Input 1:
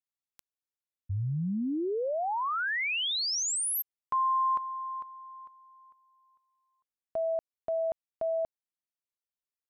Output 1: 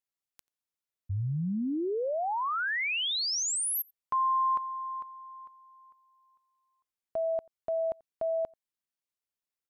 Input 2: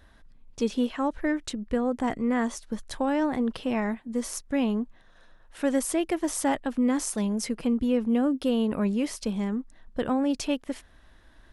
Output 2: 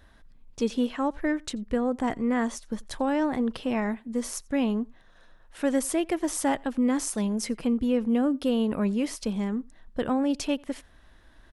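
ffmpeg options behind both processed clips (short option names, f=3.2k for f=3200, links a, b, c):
-filter_complex "[0:a]asplit=2[a][b];[b]adelay=87.46,volume=-27dB,highshelf=f=4k:g=-1.97[c];[a][c]amix=inputs=2:normalize=0"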